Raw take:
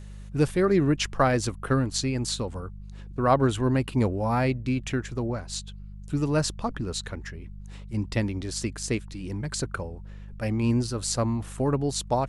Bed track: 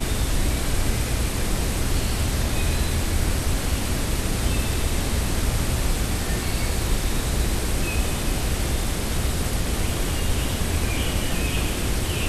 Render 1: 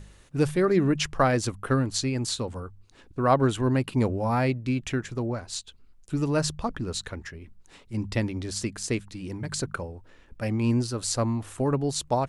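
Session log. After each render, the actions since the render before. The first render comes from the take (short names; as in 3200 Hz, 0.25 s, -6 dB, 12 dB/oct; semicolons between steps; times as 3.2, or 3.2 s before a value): de-hum 50 Hz, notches 4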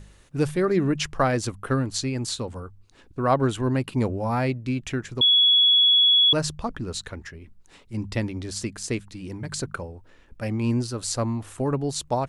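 5.21–6.33 bleep 3370 Hz -14 dBFS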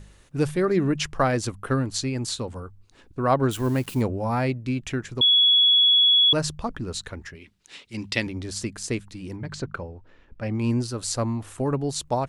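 3.51–4.02 switching spikes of -31.5 dBFS; 7.35–8.27 weighting filter D; 9.36–10.55 air absorption 120 m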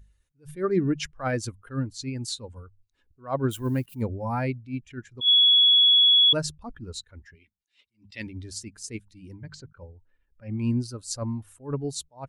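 per-bin expansion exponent 1.5; attack slew limiter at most 220 dB/s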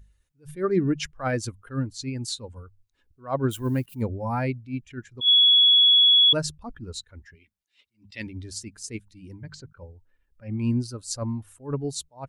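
gain +1 dB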